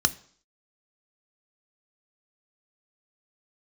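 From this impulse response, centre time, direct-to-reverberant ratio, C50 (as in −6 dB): 3 ms, 11.0 dB, 20.0 dB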